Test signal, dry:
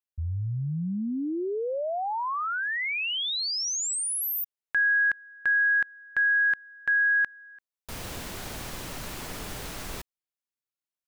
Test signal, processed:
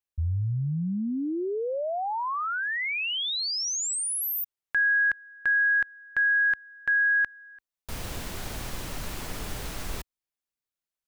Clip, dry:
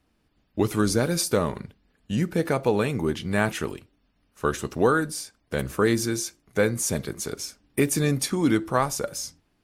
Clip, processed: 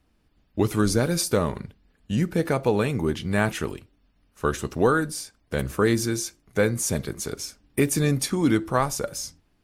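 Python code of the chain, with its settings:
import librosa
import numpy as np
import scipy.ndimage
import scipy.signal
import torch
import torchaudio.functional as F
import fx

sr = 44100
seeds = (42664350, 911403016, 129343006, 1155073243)

y = fx.low_shelf(x, sr, hz=79.0, db=7.5)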